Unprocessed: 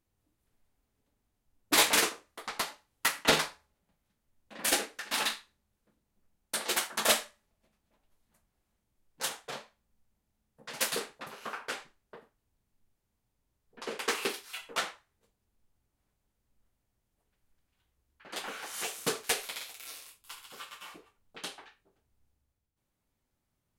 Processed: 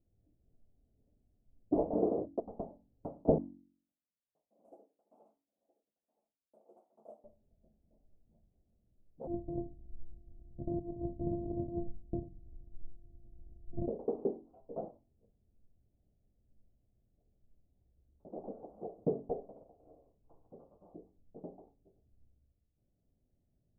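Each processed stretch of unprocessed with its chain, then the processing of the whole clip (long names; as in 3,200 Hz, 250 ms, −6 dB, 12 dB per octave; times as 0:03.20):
0:01.94–0:02.40: downward expander −54 dBFS + high-pass filter 97 Hz + envelope flattener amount 70%
0:03.38–0:07.24: resonant band-pass 7,500 Hz, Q 0.94 + single-tap delay 969 ms −19.5 dB
0:09.27–0:13.88: samples sorted by size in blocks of 128 samples + spectral tilt −3.5 dB per octave + compressor whose output falls as the input rises −41 dBFS
whole clip: elliptic low-pass filter 680 Hz, stop band 60 dB; low-shelf EQ 310 Hz +8.5 dB; hum removal 46.36 Hz, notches 7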